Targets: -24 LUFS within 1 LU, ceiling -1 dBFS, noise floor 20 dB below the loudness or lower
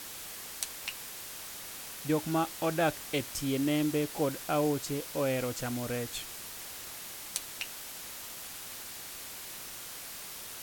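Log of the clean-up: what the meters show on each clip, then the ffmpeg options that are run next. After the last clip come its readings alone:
noise floor -44 dBFS; noise floor target -55 dBFS; loudness -34.5 LUFS; peak level -11.0 dBFS; loudness target -24.0 LUFS
-> -af "afftdn=nr=11:nf=-44"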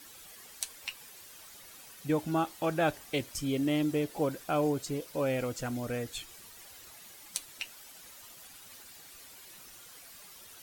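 noise floor -52 dBFS; noise floor target -53 dBFS
-> -af "afftdn=nr=6:nf=-52"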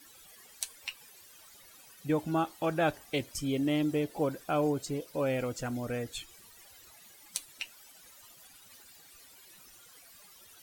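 noise floor -56 dBFS; loudness -33.0 LUFS; peak level -11.5 dBFS; loudness target -24.0 LUFS
-> -af "volume=2.82"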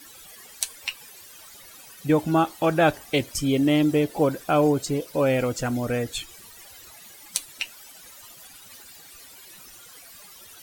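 loudness -24.0 LUFS; peak level -2.5 dBFS; noise floor -47 dBFS

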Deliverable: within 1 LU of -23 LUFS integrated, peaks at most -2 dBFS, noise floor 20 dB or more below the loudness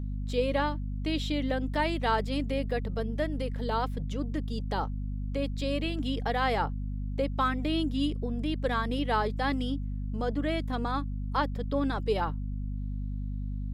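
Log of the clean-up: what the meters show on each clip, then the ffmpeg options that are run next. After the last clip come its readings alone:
hum 50 Hz; highest harmonic 250 Hz; hum level -31 dBFS; loudness -31.0 LUFS; peak level -14.0 dBFS; loudness target -23.0 LUFS
-> -af "bandreject=f=50:t=h:w=6,bandreject=f=100:t=h:w=6,bandreject=f=150:t=h:w=6,bandreject=f=200:t=h:w=6,bandreject=f=250:t=h:w=6"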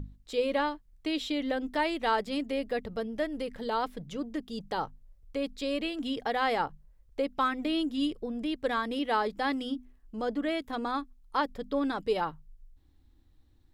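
hum not found; loudness -32.0 LUFS; peak level -15.0 dBFS; loudness target -23.0 LUFS
-> -af "volume=2.82"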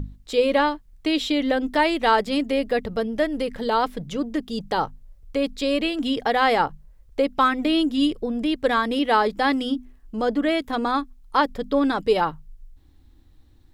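loudness -23.0 LUFS; peak level -6.0 dBFS; noise floor -53 dBFS

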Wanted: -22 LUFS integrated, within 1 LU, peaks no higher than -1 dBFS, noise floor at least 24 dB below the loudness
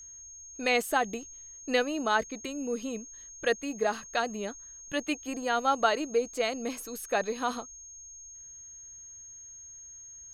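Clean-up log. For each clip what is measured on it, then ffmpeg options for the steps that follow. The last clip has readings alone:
steady tone 6.5 kHz; tone level -45 dBFS; loudness -30.5 LUFS; peak level -10.5 dBFS; loudness target -22.0 LUFS
-> -af "bandreject=f=6500:w=30"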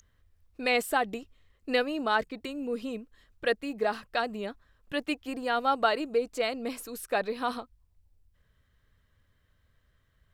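steady tone not found; loudness -30.5 LUFS; peak level -10.5 dBFS; loudness target -22.0 LUFS
-> -af "volume=2.66"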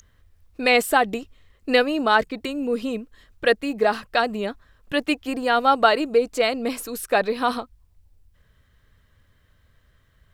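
loudness -22.0 LUFS; peak level -2.0 dBFS; noise floor -61 dBFS

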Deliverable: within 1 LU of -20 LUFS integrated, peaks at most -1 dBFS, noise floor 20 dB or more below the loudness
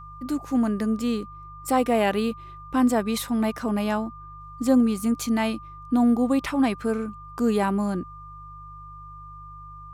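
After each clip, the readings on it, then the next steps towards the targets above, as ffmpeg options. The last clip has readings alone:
hum 50 Hz; highest harmonic 150 Hz; hum level -43 dBFS; steady tone 1.2 kHz; tone level -41 dBFS; loudness -24.5 LUFS; peak level -8.5 dBFS; loudness target -20.0 LUFS
-> -af "bandreject=f=50:t=h:w=4,bandreject=f=100:t=h:w=4,bandreject=f=150:t=h:w=4"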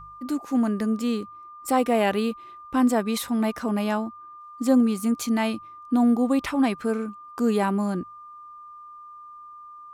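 hum not found; steady tone 1.2 kHz; tone level -41 dBFS
-> -af "bandreject=f=1200:w=30"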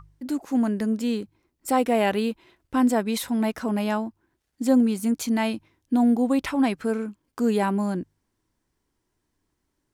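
steady tone not found; loudness -24.5 LUFS; peak level -9.0 dBFS; loudness target -20.0 LUFS
-> -af "volume=1.68"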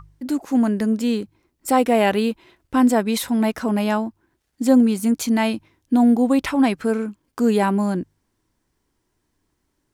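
loudness -20.0 LUFS; peak level -4.5 dBFS; noise floor -73 dBFS

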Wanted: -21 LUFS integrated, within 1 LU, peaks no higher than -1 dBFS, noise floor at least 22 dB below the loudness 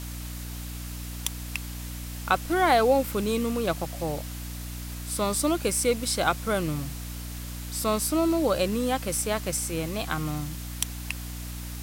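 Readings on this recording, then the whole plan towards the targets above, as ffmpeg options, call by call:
hum 60 Hz; highest harmonic 300 Hz; hum level -34 dBFS; noise floor -37 dBFS; noise floor target -50 dBFS; loudness -28.0 LUFS; peak level -5.0 dBFS; loudness target -21.0 LUFS
-> -af "bandreject=f=60:t=h:w=6,bandreject=f=120:t=h:w=6,bandreject=f=180:t=h:w=6,bandreject=f=240:t=h:w=6,bandreject=f=300:t=h:w=6"
-af "afftdn=nr=13:nf=-37"
-af "volume=2.24,alimiter=limit=0.891:level=0:latency=1"

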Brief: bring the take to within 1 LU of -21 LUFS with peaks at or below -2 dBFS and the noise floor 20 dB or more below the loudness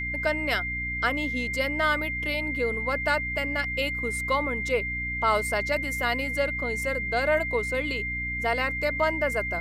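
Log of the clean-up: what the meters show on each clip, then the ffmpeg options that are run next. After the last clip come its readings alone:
hum 60 Hz; highest harmonic 300 Hz; hum level -34 dBFS; steady tone 2.1 kHz; tone level -29 dBFS; loudness -26.0 LUFS; peak level -10.5 dBFS; loudness target -21.0 LUFS
-> -af "bandreject=f=60:t=h:w=6,bandreject=f=120:t=h:w=6,bandreject=f=180:t=h:w=6,bandreject=f=240:t=h:w=6,bandreject=f=300:t=h:w=6"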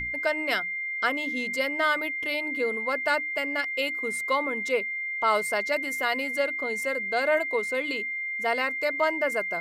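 hum not found; steady tone 2.1 kHz; tone level -29 dBFS
-> -af "bandreject=f=2100:w=30"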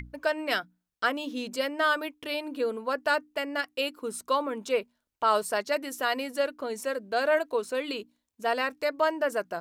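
steady tone not found; loudness -29.5 LUFS; peak level -12.0 dBFS; loudness target -21.0 LUFS
-> -af "volume=2.66"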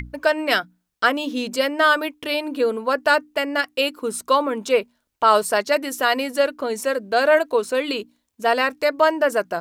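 loudness -21.0 LUFS; peak level -3.5 dBFS; noise floor -74 dBFS

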